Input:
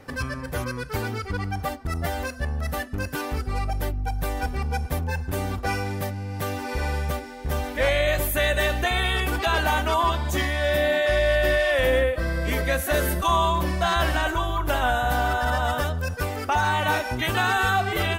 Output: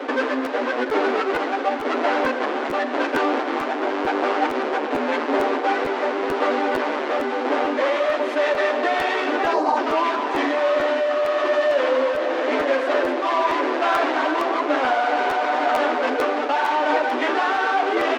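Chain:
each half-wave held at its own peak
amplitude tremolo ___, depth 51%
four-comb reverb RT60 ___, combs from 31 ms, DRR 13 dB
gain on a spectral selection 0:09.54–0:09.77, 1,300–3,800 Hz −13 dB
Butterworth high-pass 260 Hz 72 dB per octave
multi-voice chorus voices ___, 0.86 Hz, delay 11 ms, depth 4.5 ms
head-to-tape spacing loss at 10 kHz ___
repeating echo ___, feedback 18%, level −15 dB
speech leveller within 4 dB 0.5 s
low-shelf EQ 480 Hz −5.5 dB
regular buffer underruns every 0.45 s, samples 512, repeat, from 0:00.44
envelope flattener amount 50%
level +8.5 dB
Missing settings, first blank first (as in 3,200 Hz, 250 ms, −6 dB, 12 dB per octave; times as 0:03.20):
0.94 Hz, 3.8 s, 6, 39 dB, 902 ms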